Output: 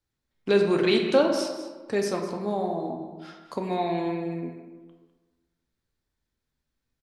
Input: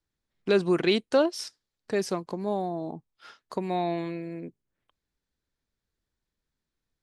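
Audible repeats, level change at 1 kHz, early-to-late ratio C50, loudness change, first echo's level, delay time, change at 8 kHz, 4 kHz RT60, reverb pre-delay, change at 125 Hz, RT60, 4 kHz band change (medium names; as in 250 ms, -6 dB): 1, +2.0 dB, 4.5 dB, +2.5 dB, -13.5 dB, 202 ms, +1.5 dB, 0.75 s, 3 ms, +1.5 dB, 1.3 s, +1.5 dB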